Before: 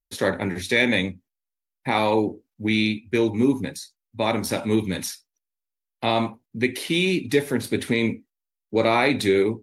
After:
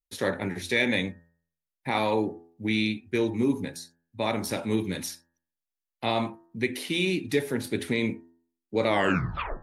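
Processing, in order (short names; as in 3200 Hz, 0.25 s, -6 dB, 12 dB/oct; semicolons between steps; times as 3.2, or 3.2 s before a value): tape stop at the end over 0.76 s; de-hum 84.11 Hz, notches 22; gain -4.5 dB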